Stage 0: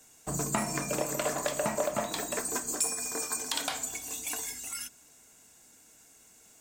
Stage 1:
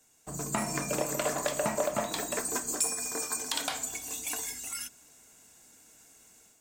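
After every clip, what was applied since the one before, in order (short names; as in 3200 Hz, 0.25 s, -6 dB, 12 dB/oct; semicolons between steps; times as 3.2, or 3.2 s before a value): AGC gain up to 8 dB; gain -7.5 dB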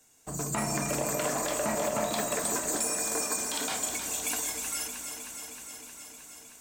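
limiter -22.5 dBFS, peak gain reduction 10 dB; on a send: echo with dull and thin repeats by turns 0.156 s, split 1100 Hz, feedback 86%, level -6.5 dB; on the sum: gain +2.5 dB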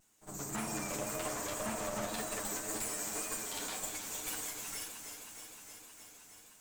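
minimum comb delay 9.6 ms; pre-echo 56 ms -13 dB; vibrato 1.9 Hz 44 cents; gain -6.5 dB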